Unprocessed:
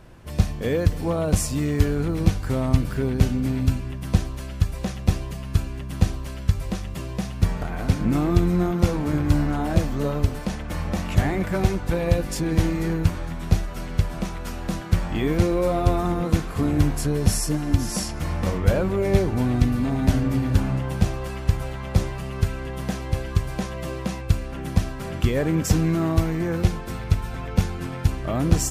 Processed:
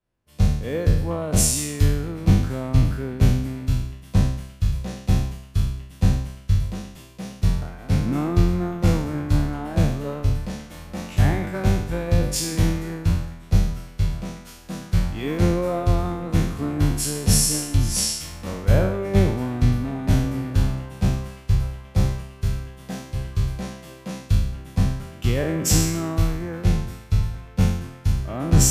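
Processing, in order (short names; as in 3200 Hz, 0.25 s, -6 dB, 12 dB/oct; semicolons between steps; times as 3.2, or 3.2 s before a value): spectral trails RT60 1.12 s; three-band expander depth 100%; gain -4 dB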